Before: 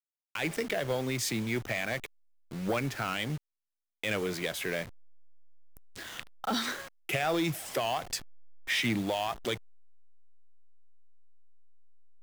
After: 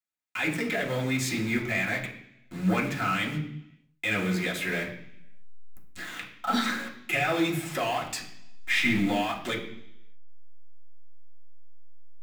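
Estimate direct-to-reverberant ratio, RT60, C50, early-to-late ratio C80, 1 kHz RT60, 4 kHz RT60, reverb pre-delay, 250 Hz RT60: -5.5 dB, 0.70 s, 8.0 dB, 11.5 dB, 0.65 s, 0.90 s, 3 ms, 0.85 s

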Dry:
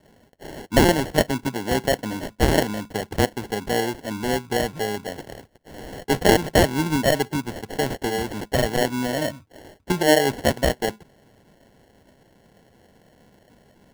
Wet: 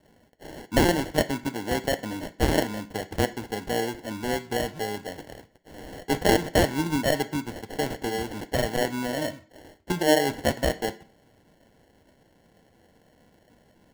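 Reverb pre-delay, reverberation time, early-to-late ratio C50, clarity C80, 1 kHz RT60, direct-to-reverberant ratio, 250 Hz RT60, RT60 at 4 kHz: 3 ms, 0.45 s, 16.5 dB, 21.0 dB, 0.45 s, 9.0 dB, 0.50 s, 0.40 s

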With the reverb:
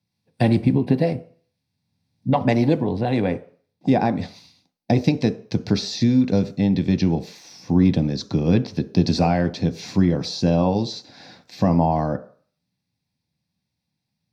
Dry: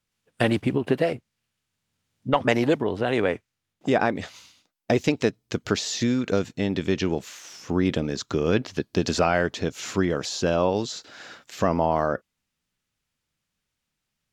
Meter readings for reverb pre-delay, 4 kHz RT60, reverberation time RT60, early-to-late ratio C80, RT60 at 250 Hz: 3 ms, 0.45 s, 0.45 s, 20.0 dB, 0.40 s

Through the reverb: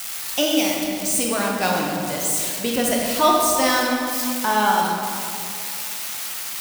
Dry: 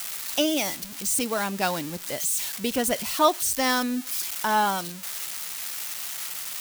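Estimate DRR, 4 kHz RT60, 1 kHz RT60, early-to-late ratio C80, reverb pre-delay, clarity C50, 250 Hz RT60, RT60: -1.5 dB, 1.6 s, 2.5 s, 1.5 dB, 14 ms, 0.0 dB, 2.9 s, 2.6 s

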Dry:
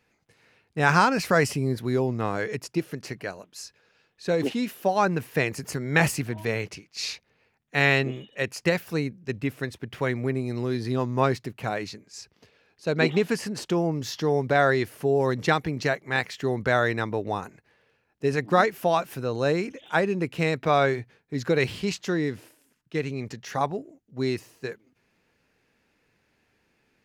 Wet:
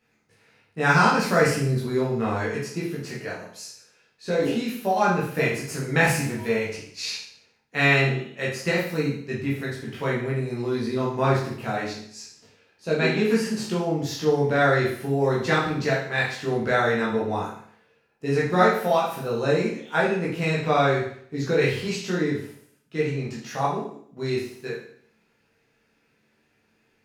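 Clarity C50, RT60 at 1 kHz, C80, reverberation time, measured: 4.0 dB, 0.60 s, 8.0 dB, 0.60 s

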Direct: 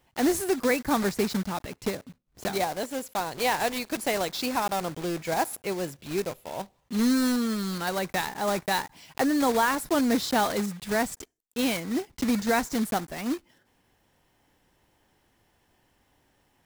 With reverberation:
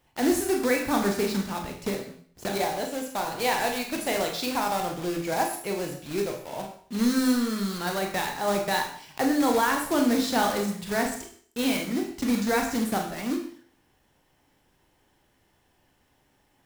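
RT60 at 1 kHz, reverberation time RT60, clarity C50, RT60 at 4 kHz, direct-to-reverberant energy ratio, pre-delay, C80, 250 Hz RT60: 0.50 s, 0.50 s, 6.5 dB, 0.50 s, 2.0 dB, 23 ms, 9.5 dB, 0.50 s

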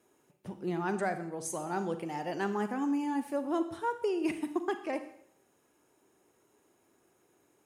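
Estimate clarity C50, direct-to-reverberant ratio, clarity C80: 11.0 dB, 9.5 dB, 14.0 dB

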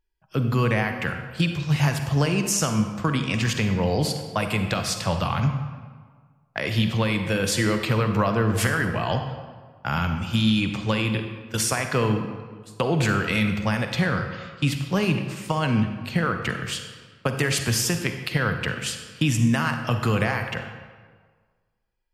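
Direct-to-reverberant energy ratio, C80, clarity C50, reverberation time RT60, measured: 6.0 dB, 8.0 dB, 6.5 dB, 1.6 s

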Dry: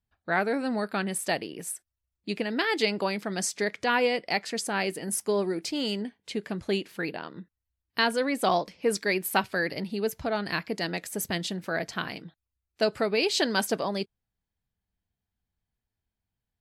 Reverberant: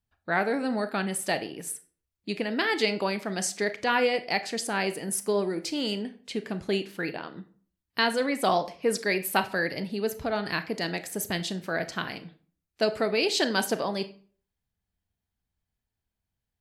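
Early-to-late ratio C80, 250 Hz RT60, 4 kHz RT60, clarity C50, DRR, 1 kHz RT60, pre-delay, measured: 19.5 dB, 0.50 s, 0.35 s, 15.0 dB, 11.0 dB, 0.45 s, 28 ms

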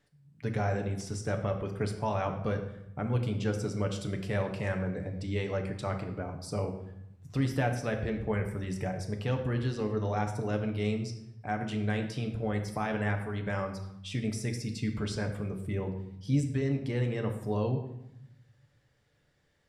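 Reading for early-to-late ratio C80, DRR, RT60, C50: 10.5 dB, 3.5 dB, 0.80 s, 8.5 dB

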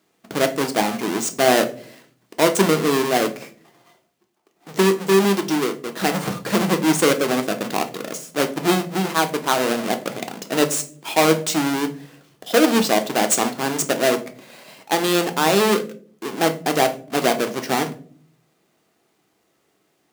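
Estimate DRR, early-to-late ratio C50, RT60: 6.5 dB, 14.5 dB, no single decay rate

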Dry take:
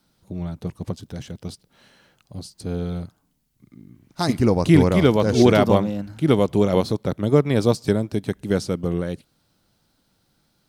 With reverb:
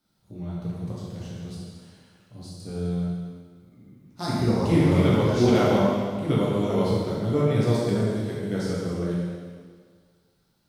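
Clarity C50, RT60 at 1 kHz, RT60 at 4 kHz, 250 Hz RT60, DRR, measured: -2.5 dB, 1.8 s, 1.7 s, 1.8 s, -7.5 dB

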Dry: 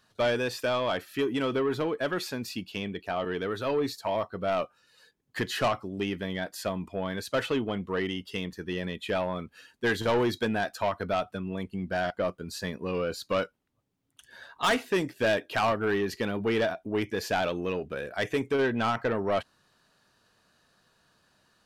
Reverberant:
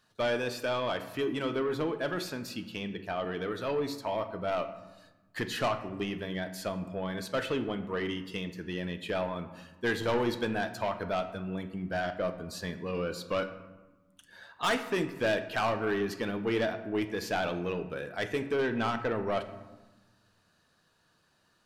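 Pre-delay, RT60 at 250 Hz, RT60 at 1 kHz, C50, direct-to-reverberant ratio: 6 ms, 1.8 s, 1.2 s, 11.5 dB, 8.0 dB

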